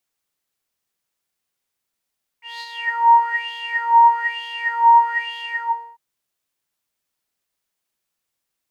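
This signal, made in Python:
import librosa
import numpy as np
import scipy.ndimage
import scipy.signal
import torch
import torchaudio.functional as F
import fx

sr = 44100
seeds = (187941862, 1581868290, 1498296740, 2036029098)

y = fx.sub_patch_wobble(sr, seeds[0], note=82, wave='triangle', wave2='sine', interval_st=12, level2_db=-10.0, sub_db=-18.0, noise_db=-20.5, kind='bandpass', cutoff_hz=1200.0, q=9.9, env_oct=1.0, env_decay_s=0.76, env_sustain_pct=50, attack_ms=185.0, decay_s=0.05, sustain_db=-5.0, release_s=0.57, note_s=2.98, lfo_hz=1.1, wobble_oct=0.9)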